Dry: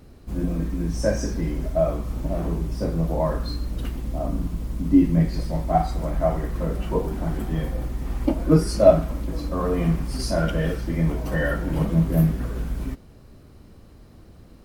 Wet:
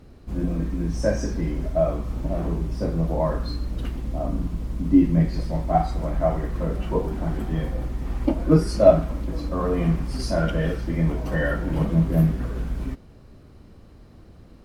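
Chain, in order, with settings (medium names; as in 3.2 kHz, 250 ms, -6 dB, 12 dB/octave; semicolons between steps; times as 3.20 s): treble shelf 8.3 kHz -10 dB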